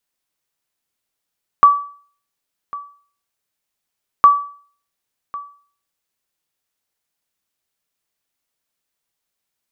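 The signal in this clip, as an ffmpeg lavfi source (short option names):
-f lavfi -i "aevalsrc='0.841*(sin(2*PI*1150*mod(t,2.61))*exp(-6.91*mod(t,2.61)/0.46)+0.1*sin(2*PI*1150*max(mod(t,2.61)-1.1,0))*exp(-6.91*max(mod(t,2.61)-1.1,0)/0.46))':d=5.22:s=44100"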